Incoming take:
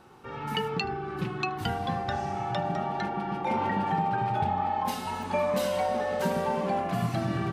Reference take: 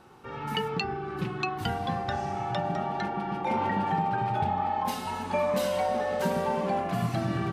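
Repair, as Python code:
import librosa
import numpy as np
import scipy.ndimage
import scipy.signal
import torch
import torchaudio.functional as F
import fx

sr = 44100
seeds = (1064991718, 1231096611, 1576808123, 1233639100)

y = fx.fix_interpolate(x, sr, at_s=(5.23,), length_ms=1.9)
y = fx.fix_echo_inverse(y, sr, delay_ms=77, level_db=-22.5)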